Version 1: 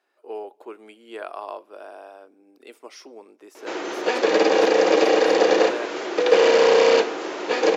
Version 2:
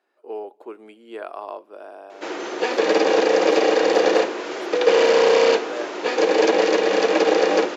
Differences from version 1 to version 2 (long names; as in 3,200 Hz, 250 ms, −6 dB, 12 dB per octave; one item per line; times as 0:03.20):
speech: add spectral tilt −1.5 dB per octave
background: entry −1.45 s